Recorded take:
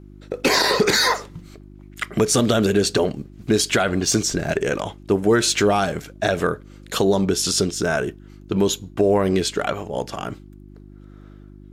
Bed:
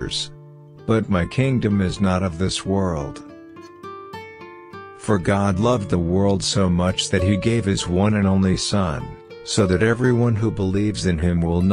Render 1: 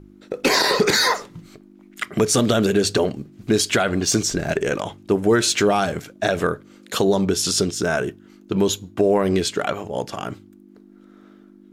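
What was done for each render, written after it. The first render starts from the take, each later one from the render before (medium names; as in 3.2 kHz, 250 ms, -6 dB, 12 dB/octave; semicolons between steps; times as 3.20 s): de-hum 50 Hz, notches 3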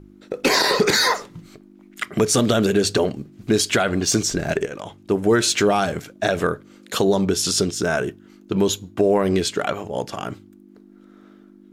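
4.66–5.42 s: fade in equal-power, from -14 dB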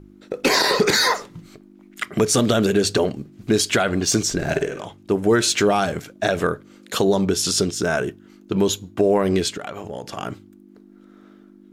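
4.36–4.86 s: flutter echo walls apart 8.8 m, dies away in 0.4 s; 9.50–10.16 s: compression 10:1, threshold -26 dBFS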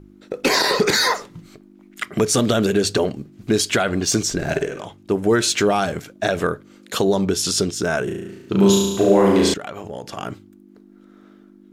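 8.04–9.54 s: flutter echo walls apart 6.1 m, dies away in 1.1 s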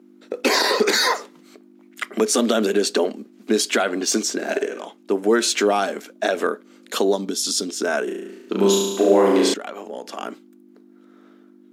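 elliptic high-pass 220 Hz, stop band 40 dB; 7.16–7.69 s: time-frequency box 310–3100 Hz -8 dB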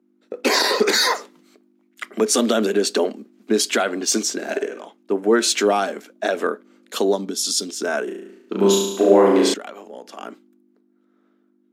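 three bands expanded up and down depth 40%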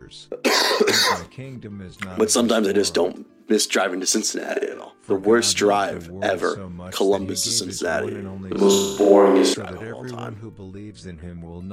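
add bed -16.5 dB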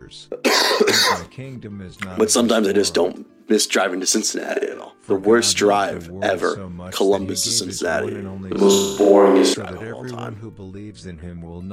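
trim +2 dB; peak limiter -2 dBFS, peak gain reduction 3 dB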